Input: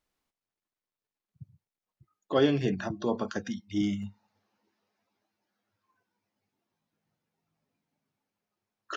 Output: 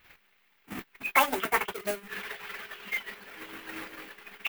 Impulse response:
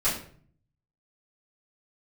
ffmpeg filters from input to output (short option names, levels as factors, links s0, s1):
-af "aeval=exprs='val(0)+0.5*0.0473*sgn(val(0))':c=same,asuperstop=centerf=5000:order=4:qfactor=0.75,highshelf=f=1700:t=q:w=1.5:g=-13.5,aecho=1:1:32|57:0.266|0.188,asetrate=88200,aresample=44100,acrusher=bits=7:mode=log:mix=0:aa=0.000001,bandreject=f=145.4:t=h:w=4,bandreject=f=290.8:t=h:w=4,bandreject=f=436.2:t=h:w=4,bandreject=f=581.6:t=h:w=4,bandreject=f=727:t=h:w=4,acompressor=threshold=0.0282:ratio=3,equalizer=f=620:t=o:w=0.75:g=-4,agate=range=0.0112:threshold=0.0251:ratio=16:detection=peak,crystalizer=i=6.5:c=0,volume=2.11"